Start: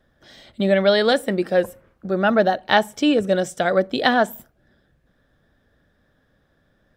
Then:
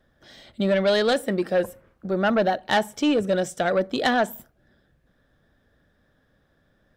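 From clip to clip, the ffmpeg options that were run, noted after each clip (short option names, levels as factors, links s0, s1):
-af "asoftclip=type=tanh:threshold=0.251,volume=0.841"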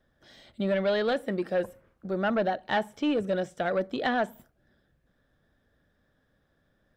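-filter_complex "[0:a]acrossover=split=3800[s0][s1];[s1]acompressor=threshold=0.00282:ratio=4:attack=1:release=60[s2];[s0][s2]amix=inputs=2:normalize=0,volume=0.531"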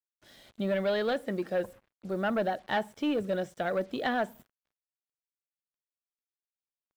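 -af "acrusher=bits=8:mix=0:aa=0.5,volume=0.75"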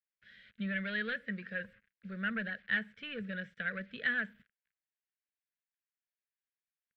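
-af "firequalizer=gain_entry='entry(150,0);entry(210,6);entry(310,-20);entry(450,-3);entry(790,-22);entry(1600,14);entry(6100,-14);entry(9600,-22)':delay=0.05:min_phase=1,volume=0.376"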